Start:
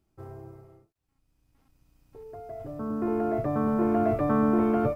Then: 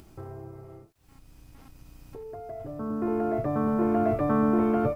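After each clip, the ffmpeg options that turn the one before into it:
ffmpeg -i in.wav -af "acompressor=mode=upward:threshold=-35dB:ratio=2.5" out.wav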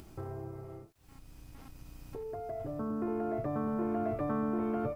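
ffmpeg -i in.wav -af "acompressor=threshold=-34dB:ratio=2.5" out.wav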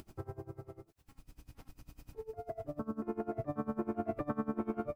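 ffmpeg -i in.wav -af "aeval=exprs='val(0)*pow(10,-23*(0.5-0.5*cos(2*PI*10*n/s))/20)':channel_layout=same,volume=1.5dB" out.wav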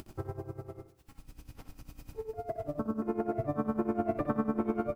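ffmpeg -i in.wav -af "aecho=1:1:63|126|189|252|315:0.211|0.108|0.055|0.028|0.0143,volume=5dB" out.wav

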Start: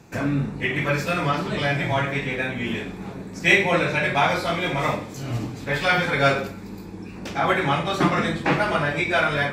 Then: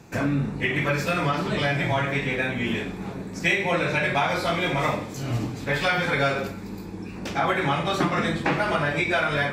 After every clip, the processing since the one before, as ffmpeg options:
ffmpeg -i in.wav -af "acompressor=threshold=-20dB:ratio=6,volume=1dB" out.wav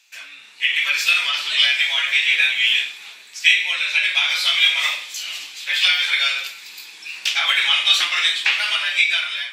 ffmpeg -i in.wav -af "highpass=frequency=3000:width_type=q:width=2.6,dynaudnorm=framelen=140:gausssize=9:maxgain=15.5dB,volume=-1dB" out.wav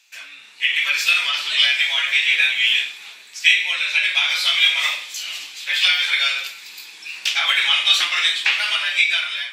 ffmpeg -i in.wav -af anull out.wav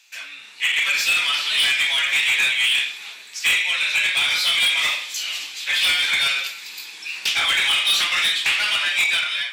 ffmpeg -i in.wav -af "asoftclip=type=tanh:threshold=-17dB,volume=2.5dB" out.wav

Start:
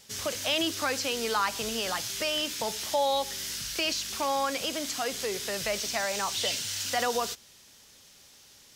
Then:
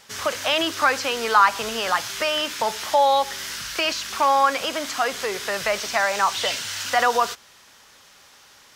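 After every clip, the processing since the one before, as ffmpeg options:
ffmpeg -i in.wav -af "equalizer=frequency=1200:width_type=o:width=2.2:gain=13.5" out.wav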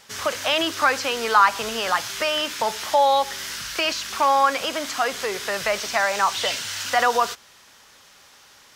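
ffmpeg -i in.wav -af anull out.wav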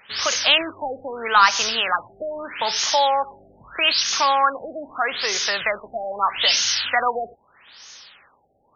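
ffmpeg -i in.wav -af "crystalizer=i=9:c=0,aeval=exprs='1.5*(cos(1*acos(clip(val(0)/1.5,-1,1)))-cos(1*PI/2))+0.0531*(cos(4*acos(clip(val(0)/1.5,-1,1)))-cos(4*PI/2))+0.0237*(cos(6*acos(clip(val(0)/1.5,-1,1)))-cos(6*PI/2))':channel_layout=same,afftfilt=real='re*lt(b*sr/1024,780*pow(6900/780,0.5+0.5*sin(2*PI*0.79*pts/sr)))':imag='im*lt(b*sr/1024,780*pow(6900/780,0.5+0.5*sin(2*PI*0.79*pts/sr)))':win_size=1024:overlap=0.75,volume=-4.5dB" out.wav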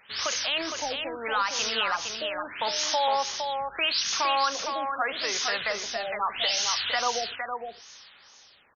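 ffmpeg -i in.wav -filter_complex "[0:a]alimiter=limit=-11dB:level=0:latency=1:release=75,asplit=2[link_01][link_02];[link_02]aecho=0:1:461:0.531[link_03];[link_01][link_03]amix=inputs=2:normalize=0,volume=-5.5dB" out.wav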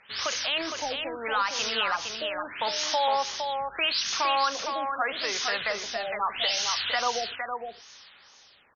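ffmpeg -i in.wav -af "lowpass=6200" out.wav

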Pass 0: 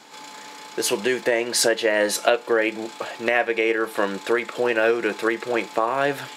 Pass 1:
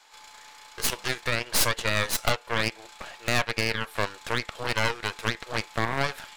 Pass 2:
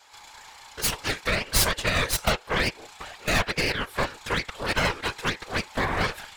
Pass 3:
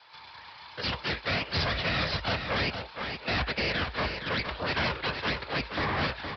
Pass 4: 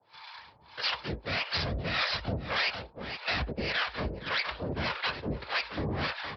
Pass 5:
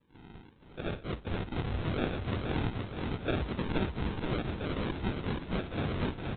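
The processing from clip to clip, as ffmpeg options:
ffmpeg -i in.wav -af "highpass=800,aeval=exprs='0.562*(cos(1*acos(clip(val(0)/0.562,-1,1)))-cos(1*PI/2))+0.158*(cos(3*acos(clip(val(0)/0.562,-1,1)))-cos(3*PI/2))+0.1*(cos(4*acos(clip(val(0)/0.562,-1,1)))-cos(4*PI/2))':channel_layout=same,asoftclip=type=hard:threshold=-19.5dB,volume=8.5dB" out.wav
ffmpeg -i in.wav -af "afftfilt=real='hypot(re,im)*cos(2*PI*random(0))':imag='hypot(re,im)*sin(2*PI*random(1))':win_size=512:overlap=0.75,volume=7.5dB" out.wav
ffmpeg -i in.wav -af "afreqshift=53,aresample=11025,asoftclip=type=hard:threshold=-26dB,aresample=44100,aecho=1:1:465:0.422" out.wav
ffmpeg -i in.wav -filter_complex "[0:a]acrossover=split=610[link_01][link_02];[link_01]aeval=exprs='val(0)*(1-1/2+1/2*cos(2*PI*1.7*n/s))':channel_layout=same[link_03];[link_02]aeval=exprs='val(0)*(1-1/2-1/2*cos(2*PI*1.7*n/s))':channel_layout=same[link_04];[link_03][link_04]amix=inputs=2:normalize=0,volume=2.5dB" out.wav
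ffmpeg -i in.wav -af "aresample=8000,acrusher=samples=11:mix=1:aa=0.000001:lfo=1:lforange=6.6:lforate=0.83,aresample=44100,aecho=1:1:474|948|1422|1896|2370|2844:0.596|0.28|0.132|0.0618|0.0291|0.0137,volume=-1.5dB" out.wav

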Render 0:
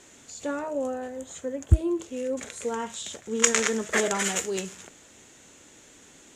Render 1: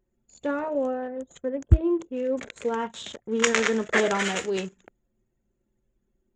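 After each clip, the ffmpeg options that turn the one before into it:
ffmpeg -i in.wav -af "anlmdn=0.631,lowpass=4000,equalizer=frequency=82:width_type=o:width=0.77:gain=-2.5,volume=3dB" out.wav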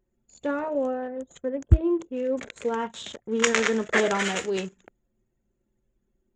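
ffmpeg -i in.wav -af anull out.wav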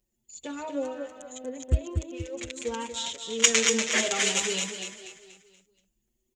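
ffmpeg -i in.wav -filter_complex "[0:a]aexciter=amount=5:drive=3.4:freq=2300,asplit=2[link_01][link_02];[link_02]aecho=0:1:240|480|720|960|1200:0.501|0.2|0.0802|0.0321|0.0128[link_03];[link_01][link_03]amix=inputs=2:normalize=0,asplit=2[link_04][link_05];[link_05]adelay=6.6,afreqshift=0.85[link_06];[link_04][link_06]amix=inputs=2:normalize=1,volume=-4dB" out.wav

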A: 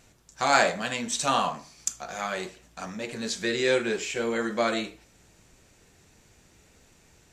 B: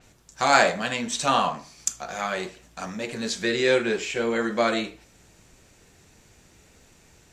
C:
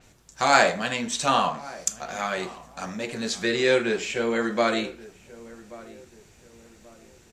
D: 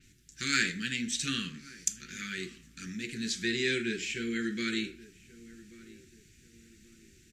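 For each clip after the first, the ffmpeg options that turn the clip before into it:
ffmpeg -i in.wav -af "adynamicequalizer=threshold=0.00562:dfrequency=5300:dqfactor=0.7:tfrequency=5300:tqfactor=0.7:attack=5:release=100:ratio=0.375:range=3:mode=cutabove:tftype=highshelf,volume=3dB" out.wav
ffmpeg -i in.wav -filter_complex "[0:a]asplit=2[link_01][link_02];[link_02]adelay=1132,lowpass=frequency=1200:poles=1,volume=-18.5dB,asplit=2[link_03][link_04];[link_04]adelay=1132,lowpass=frequency=1200:poles=1,volume=0.39,asplit=2[link_05][link_06];[link_06]adelay=1132,lowpass=frequency=1200:poles=1,volume=0.39[link_07];[link_01][link_03][link_05][link_07]amix=inputs=4:normalize=0" out.wav
ffmpeg -i in.wav -af "asuperstop=centerf=770:order=8:qfactor=0.6,volume=-4dB" out.wav

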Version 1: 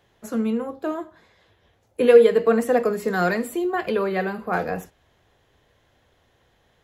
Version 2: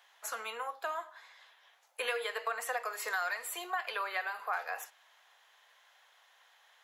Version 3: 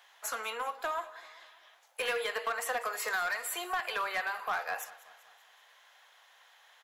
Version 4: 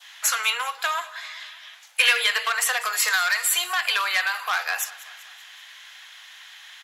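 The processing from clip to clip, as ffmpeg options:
ffmpeg -i in.wav -af "highpass=frequency=840:width=0.5412,highpass=frequency=840:width=1.3066,acompressor=threshold=-36dB:ratio=4,volume=3dB" out.wav
ffmpeg -i in.wav -filter_complex "[0:a]asplit=2[link_01][link_02];[link_02]aeval=exprs='0.0237*(abs(mod(val(0)/0.0237+3,4)-2)-1)':channel_layout=same,volume=-6dB[link_03];[link_01][link_03]amix=inputs=2:normalize=0,aecho=1:1:193|386|579|772:0.112|0.0595|0.0315|0.0167" out.wav
ffmpeg -i in.wav -af "crystalizer=i=8:c=0,adynamicequalizer=threshold=0.00891:dfrequency=2100:dqfactor=1.2:tfrequency=2100:tqfactor=1.2:attack=5:release=100:ratio=0.375:range=2.5:mode=cutabove:tftype=bell,bandpass=frequency=2200:width_type=q:width=0.92:csg=0,volume=8.5dB" out.wav

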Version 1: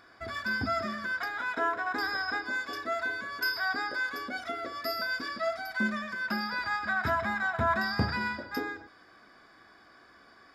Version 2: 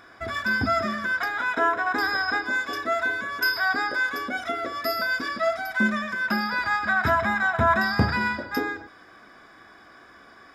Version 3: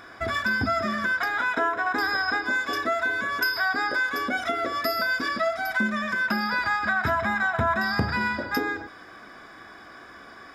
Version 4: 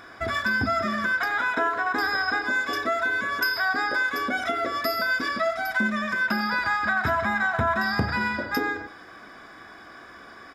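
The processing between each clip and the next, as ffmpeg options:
ffmpeg -i in.wav -af "bandreject=frequency=4500:width=7.1,volume=7dB" out.wav
ffmpeg -i in.wav -af "acompressor=threshold=-28dB:ratio=3,volume=4.5dB" out.wav
ffmpeg -i in.wav -filter_complex "[0:a]asplit=2[link_01][link_02];[link_02]adelay=90,highpass=300,lowpass=3400,asoftclip=type=hard:threshold=-19.5dB,volume=-12dB[link_03];[link_01][link_03]amix=inputs=2:normalize=0" out.wav

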